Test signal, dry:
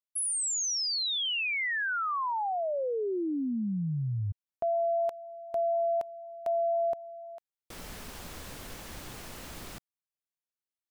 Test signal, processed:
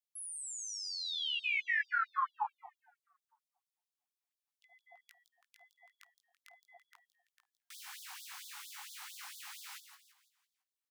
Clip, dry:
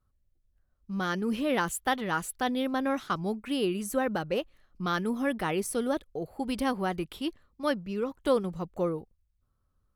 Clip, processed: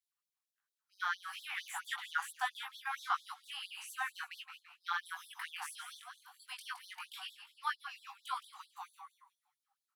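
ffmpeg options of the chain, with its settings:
ffmpeg -i in.wav -filter_complex "[0:a]acrossover=split=2600[link_01][link_02];[link_02]acompressor=threshold=-45dB:ratio=4:attack=1:release=60[link_03];[link_01][link_03]amix=inputs=2:normalize=0,asplit=2[link_04][link_05];[link_05]asoftclip=type=tanh:threshold=-24.5dB,volume=-9.5dB[link_06];[link_04][link_06]amix=inputs=2:normalize=0,asplit=6[link_07][link_08][link_09][link_10][link_11][link_12];[link_08]adelay=167,afreqshift=-83,volume=-9dB[link_13];[link_09]adelay=334,afreqshift=-166,volume=-16.3dB[link_14];[link_10]adelay=501,afreqshift=-249,volume=-23.7dB[link_15];[link_11]adelay=668,afreqshift=-332,volume=-31dB[link_16];[link_12]adelay=835,afreqshift=-415,volume=-38.3dB[link_17];[link_07][link_13][link_14][link_15][link_16][link_17]amix=inputs=6:normalize=0,flanger=delay=17.5:depth=3.7:speed=0.39,afftfilt=real='re*gte(b*sr/1024,710*pow(3400/710,0.5+0.5*sin(2*PI*4.4*pts/sr)))':imag='im*gte(b*sr/1024,710*pow(3400/710,0.5+0.5*sin(2*PI*4.4*pts/sr)))':win_size=1024:overlap=0.75" out.wav

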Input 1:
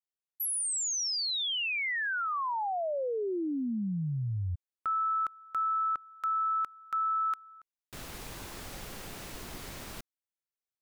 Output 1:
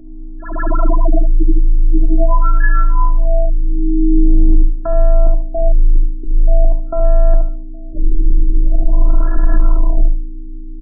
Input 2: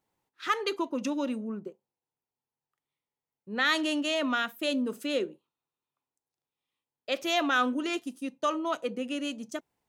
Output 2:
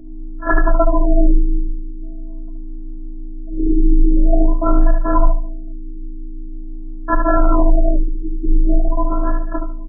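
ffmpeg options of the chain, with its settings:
ffmpeg -i in.wav -filter_complex "[0:a]lowpass=frequency=9300:width=0.5412,lowpass=frequency=9300:width=1.3066,asubboost=boost=9.5:cutoff=69,asplit=2[link_01][link_02];[link_02]acompressor=threshold=-38dB:ratio=6:attack=0.35:release=59,volume=0.5dB[link_03];[link_01][link_03]amix=inputs=2:normalize=0,acrusher=samples=13:mix=1:aa=0.000001,aeval=exprs='0.266*(cos(1*acos(clip(val(0)/0.266,-1,1)))-cos(1*PI/2))+0.0841*(cos(3*acos(clip(val(0)/0.266,-1,1)))-cos(3*PI/2))+0.00376*(cos(7*acos(clip(val(0)/0.266,-1,1)))-cos(7*PI/2))+0.0335*(cos(8*acos(clip(val(0)/0.266,-1,1)))-cos(8*PI/2))':channel_layout=same,asplit=2[link_04][link_05];[link_05]adelay=816.3,volume=-27dB,highshelf=frequency=4000:gain=-18.4[link_06];[link_04][link_06]amix=inputs=2:normalize=0,aeval=exprs='val(0)+0.00355*(sin(2*PI*60*n/s)+sin(2*PI*2*60*n/s)/2+sin(2*PI*3*60*n/s)/3+sin(2*PI*4*60*n/s)/4+sin(2*PI*5*60*n/s)/5)':channel_layout=same,afftfilt=real='hypot(re,im)*cos(PI*b)':imag='0':win_size=512:overlap=0.75,asplit=2[link_07][link_08];[link_08]aecho=0:1:73|146|219|292:0.501|0.14|0.0393|0.011[link_09];[link_07][link_09]amix=inputs=2:normalize=0,afreqshift=-27,alimiter=level_in=23dB:limit=-1dB:release=50:level=0:latency=1,afftfilt=real='re*lt(b*sr/1024,450*pow(1800/450,0.5+0.5*sin(2*PI*0.45*pts/sr)))':imag='im*lt(b*sr/1024,450*pow(1800/450,0.5+0.5*sin(2*PI*0.45*pts/sr)))':win_size=1024:overlap=0.75" out.wav

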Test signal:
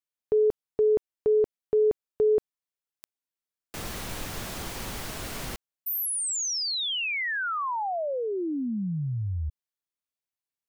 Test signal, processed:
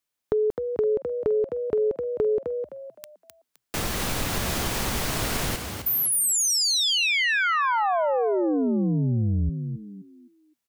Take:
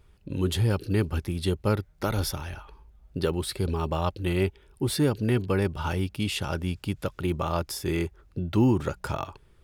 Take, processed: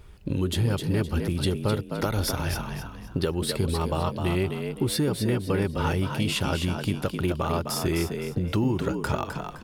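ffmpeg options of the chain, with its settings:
ffmpeg -i in.wav -filter_complex "[0:a]acompressor=threshold=-31dB:ratio=5:attack=11:release=418:knee=1:detection=rms,asplit=5[link_01][link_02][link_03][link_04][link_05];[link_02]adelay=258,afreqshift=58,volume=-6.5dB[link_06];[link_03]adelay=516,afreqshift=116,volume=-16.7dB[link_07];[link_04]adelay=774,afreqshift=174,volume=-26.8dB[link_08];[link_05]adelay=1032,afreqshift=232,volume=-37dB[link_09];[link_01][link_06][link_07][link_08][link_09]amix=inputs=5:normalize=0,volume=9dB" out.wav

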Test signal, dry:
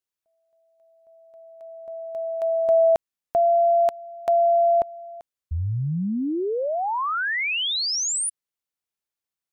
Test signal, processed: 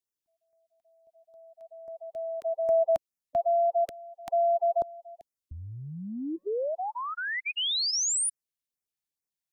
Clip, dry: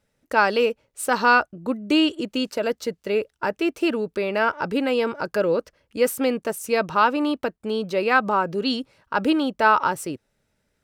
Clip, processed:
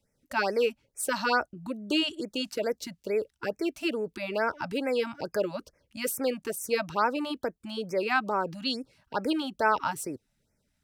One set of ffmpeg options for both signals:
ffmpeg -i in.wav -filter_complex "[0:a]equalizer=frequency=1200:width=0.79:gain=-6.5,acrossover=split=340|890|2400[link_01][link_02][link_03][link_04];[link_01]acompressor=threshold=-38dB:ratio=8:attack=7.4:release=62:knee=6:detection=peak[link_05];[link_05][link_02][link_03][link_04]amix=inputs=4:normalize=0,afftfilt=real='re*(1-between(b*sr/1024,380*pow(3700/380,0.5+0.5*sin(2*PI*2.3*pts/sr))/1.41,380*pow(3700/380,0.5+0.5*sin(2*PI*2.3*pts/sr))*1.41))':imag='im*(1-between(b*sr/1024,380*pow(3700/380,0.5+0.5*sin(2*PI*2.3*pts/sr))/1.41,380*pow(3700/380,0.5+0.5*sin(2*PI*2.3*pts/sr))*1.41))':win_size=1024:overlap=0.75,volume=-2dB" out.wav

